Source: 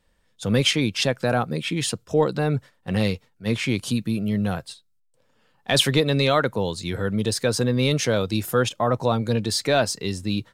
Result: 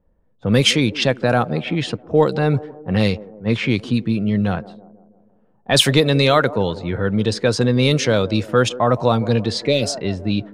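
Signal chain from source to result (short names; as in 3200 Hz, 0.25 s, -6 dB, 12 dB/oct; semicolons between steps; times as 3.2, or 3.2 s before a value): band-limited delay 0.163 s, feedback 55%, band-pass 470 Hz, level -15.5 dB; low-pass opened by the level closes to 660 Hz, open at -15 dBFS; spectral repair 9.6–9.89, 600–1900 Hz; gain +5 dB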